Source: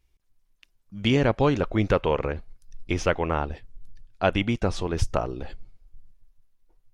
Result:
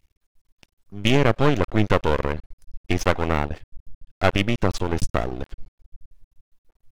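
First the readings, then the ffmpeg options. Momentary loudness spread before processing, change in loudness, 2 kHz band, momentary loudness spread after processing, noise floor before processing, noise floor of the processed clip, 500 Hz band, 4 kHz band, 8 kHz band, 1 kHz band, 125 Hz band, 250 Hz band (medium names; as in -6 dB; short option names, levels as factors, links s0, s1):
15 LU, +2.5 dB, +4.0 dB, 14 LU, -68 dBFS, under -85 dBFS, +1.5 dB, +4.0 dB, +4.0 dB, +3.0 dB, +3.0 dB, +2.0 dB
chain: -af "aeval=exprs='max(val(0),0)':c=same,volume=2"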